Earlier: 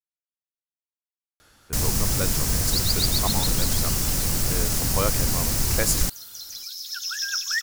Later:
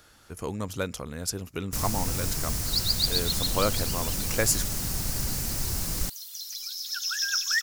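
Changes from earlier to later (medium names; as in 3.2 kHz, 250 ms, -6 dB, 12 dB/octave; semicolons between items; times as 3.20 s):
speech: entry -1.40 s; first sound -6.5 dB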